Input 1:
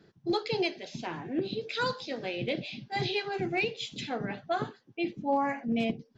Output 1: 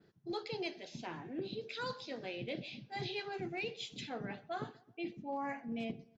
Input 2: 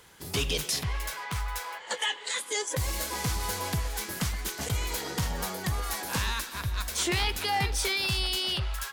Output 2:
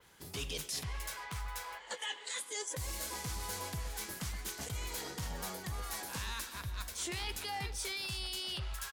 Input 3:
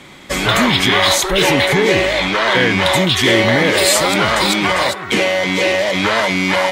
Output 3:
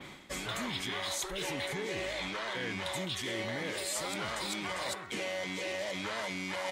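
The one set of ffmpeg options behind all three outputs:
-filter_complex "[0:a]adynamicequalizer=threshold=0.0141:dfrequency=8400:dqfactor=0.74:tfrequency=8400:tqfactor=0.74:attack=5:release=100:ratio=0.375:range=3:mode=boostabove:tftype=bell,areverse,acompressor=threshold=-29dB:ratio=5,areverse,asplit=2[a][b];[b]adelay=130,lowpass=f=2k:p=1,volume=-21dB,asplit=2[c][d];[d]adelay=130,lowpass=f=2k:p=1,volume=0.46,asplit=2[e][f];[f]adelay=130,lowpass=f=2k:p=1,volume=0.46[g];[a][c][e][g]amix=inputs=4:normalize=0,volume=-7dB"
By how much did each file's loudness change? -9.5, -9.5, -22.0 LU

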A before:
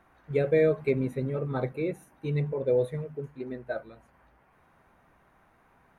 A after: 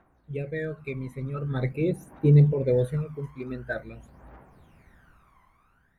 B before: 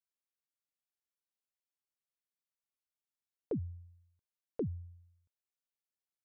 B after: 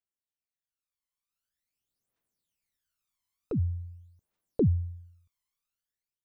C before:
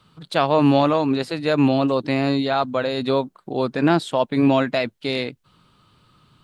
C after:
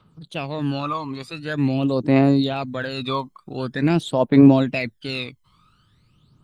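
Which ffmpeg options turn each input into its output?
-af "dynaudnorm=f=550:g=5:m=15dB,aphaser=in_gain=1:out_gain=1:delay=1:decay=0.75:speed=0.46:type=triangular,volume=-10dB"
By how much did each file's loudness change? +3.0, +10.5, 0.0 LU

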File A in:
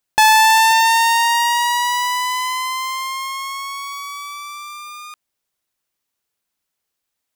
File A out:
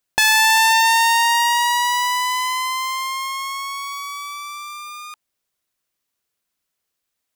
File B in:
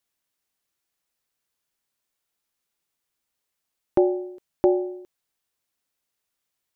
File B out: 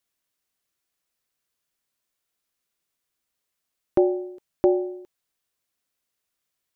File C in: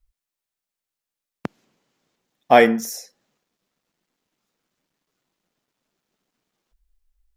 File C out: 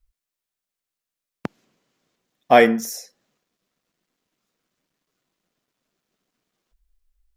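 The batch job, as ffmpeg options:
-af "bandreject=f=860:w=12"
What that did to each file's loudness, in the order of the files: -1.5, 0.0, 0.0 LU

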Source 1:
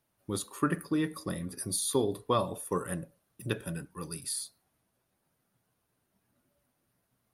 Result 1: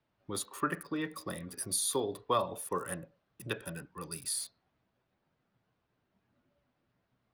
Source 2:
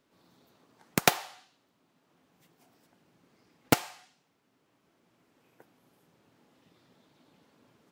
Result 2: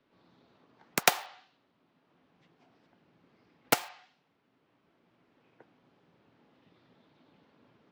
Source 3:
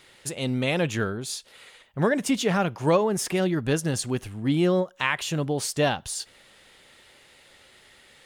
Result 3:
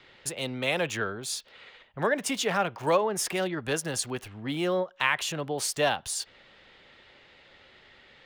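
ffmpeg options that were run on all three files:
-filter_complex "[0:a]acrossover=split=460[a][b];[a]acompressor=threshold=-54dB:ratio=1.5[c];[c][b]amix=inputs=2:normalize=0,acrossover=split=360|820|4700[d][e][f][g];[g]aeval=exprs='val(0)*gte(abs(val(0)),0.00447)':c=same[h];[d][e][f][h]amix=inputs=4:normalize=0"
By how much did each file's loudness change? -2.5, -1.0, -3.0 LU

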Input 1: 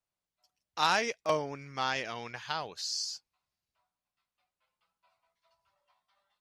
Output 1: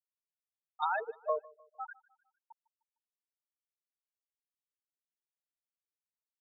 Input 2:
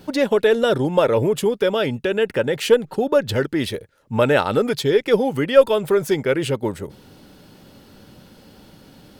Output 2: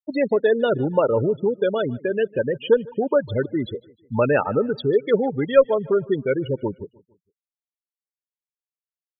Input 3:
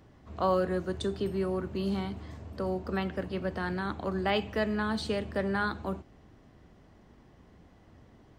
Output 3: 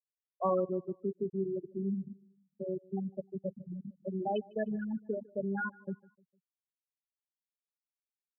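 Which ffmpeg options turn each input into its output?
-af "afftfilt=real='re*gte(hypot(re,im),0.178)':imag='im*gte(hypot(re,im),0.178)':win_size=1024:overlap=0.75,aecho=1:1:152|304|456:0.0668|0.0301|0.0135,volume=-2dB"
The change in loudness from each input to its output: -4.5, -2.5, -4.5 LU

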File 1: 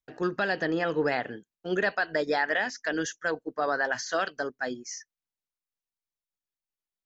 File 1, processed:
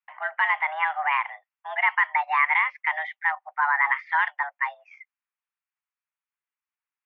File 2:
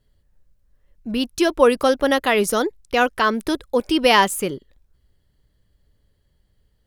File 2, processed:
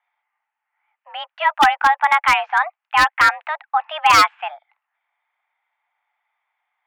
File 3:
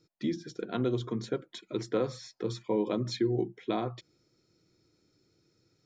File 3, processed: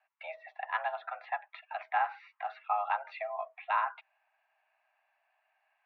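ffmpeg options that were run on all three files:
-af "highpass=f=570:t=q:w=0.5412,highpass=f=570:t=q:w=1.307,lowpass=f=2.4k:t=q:w=0.5176,lowpass=f=2.4k:t=q:w=0.7071,lowpass=f=2.4k:t=q:w=1.932,afreqshift=300,aeval=exprs='0.251*(abs(mod(val(0)/0.251+3,4)-2)-1)':c=same,volume=6.5dB"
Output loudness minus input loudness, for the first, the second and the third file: +5.0, +3.0, -2.5 LU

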